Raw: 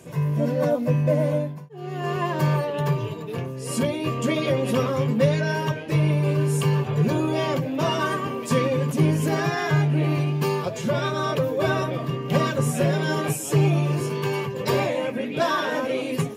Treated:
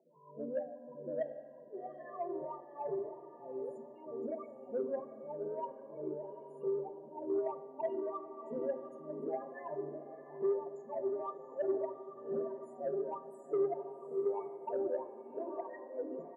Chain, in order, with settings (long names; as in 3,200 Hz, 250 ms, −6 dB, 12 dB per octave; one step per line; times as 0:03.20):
high-pass filter 190 Hz 24 dB per octave
flat-topped bell 2,300 Hz −10 dB 2.6 octaves
mains-hum notches 50/100/150/200/250/300 Hz
comb filter 1 ms, depth 32%
in parallel at +1 dB: downward compressor, threshold −38 dBFS, peak gain reduction 17.5 dB
on the sum: spectral peaks only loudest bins 16
LFO wah 1.6 Hz 370–2,000 Hz, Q 7.8
soft clipping −23.5 dBFS, distortion −21 dB
feedback delay with all-pass diffusion 766 ms, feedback 40%, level −11.5 dB
convolution reverb RT60 1.6 s, pre-delay 4 ms, DRR 11.5 dB
level −2 dB